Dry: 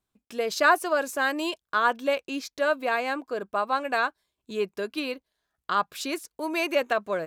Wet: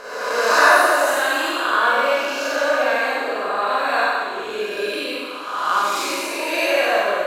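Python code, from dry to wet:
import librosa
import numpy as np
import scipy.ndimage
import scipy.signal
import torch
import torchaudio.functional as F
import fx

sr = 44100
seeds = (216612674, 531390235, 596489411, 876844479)

y = fx.spec_swells(x, sr, rise_s=1.44)
y = fx.peak_eq(y, sr, hz=170.0, db=-11.5, octaves=1.3)
y = fx.rev_schroeder(y, sr, rt60_s=1.7, comb_ms=31, drr_db=-5.5)
y = F.gain(torch.from_numpy(y), -2.0).numpy()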